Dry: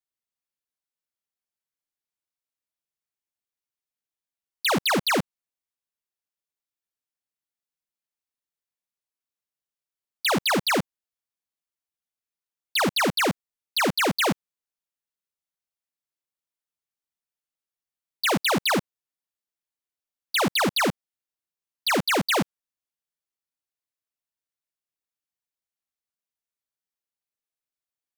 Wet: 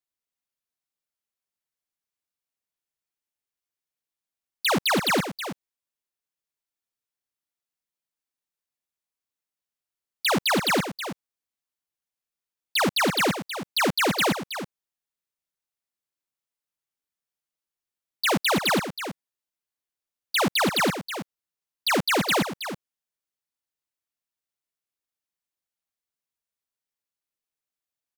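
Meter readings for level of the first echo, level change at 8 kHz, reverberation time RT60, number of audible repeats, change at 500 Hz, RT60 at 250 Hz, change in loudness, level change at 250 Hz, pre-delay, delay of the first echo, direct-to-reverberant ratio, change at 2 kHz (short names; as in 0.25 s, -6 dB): -10.5 dB, +0.5 dB, none, 1, +0.5 dB, none, 0.0 dB, +0.5 dB, none, 0.321 s, none, +0.5 dB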